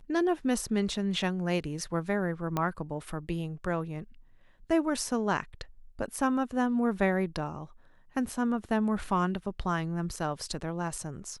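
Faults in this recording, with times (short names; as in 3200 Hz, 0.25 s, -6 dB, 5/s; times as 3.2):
2.57 pop -16 dBFS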